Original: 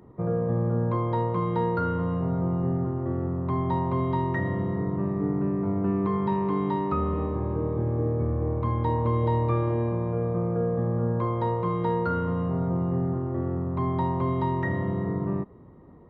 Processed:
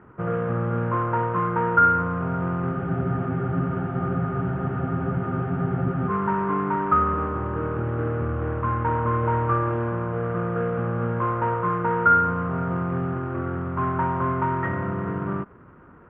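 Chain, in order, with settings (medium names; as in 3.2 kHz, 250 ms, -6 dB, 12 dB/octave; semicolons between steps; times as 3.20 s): CVSD coder 16 kbps; resonant low-pass 1.4 kHz, resonance Q 6.5; spectral freeze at 2.74 s, 3.36 s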